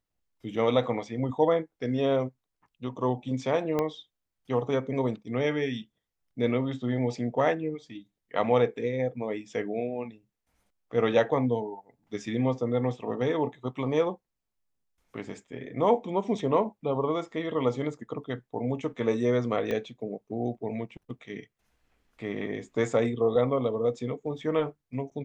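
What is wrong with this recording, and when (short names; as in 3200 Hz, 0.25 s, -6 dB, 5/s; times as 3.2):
3.79 pop -15 dBFS
19.71 pop -19 dBFS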